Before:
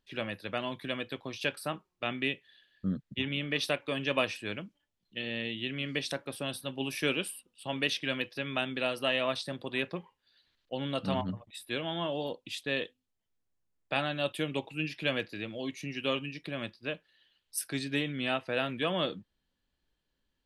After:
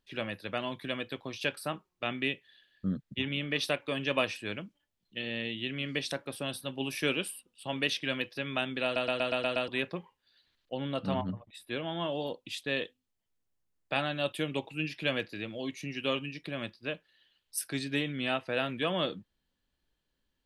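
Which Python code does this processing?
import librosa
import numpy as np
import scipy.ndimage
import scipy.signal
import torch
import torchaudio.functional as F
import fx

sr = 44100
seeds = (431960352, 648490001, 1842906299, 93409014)

y = fx.high_shelf(x, sr, hz=3300.0, db=-7.5, at=(10.74, 12.0))
y = fx.edit(y, sr, fx.stutter_over(start_s=8.84, slice_s=0.12, count=7), tone=tone)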